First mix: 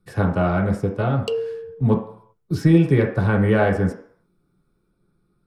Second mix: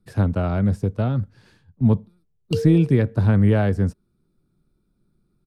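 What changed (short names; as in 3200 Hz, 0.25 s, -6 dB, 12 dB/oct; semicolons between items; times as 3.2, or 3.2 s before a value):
background: entry +1.25 s; reverb: off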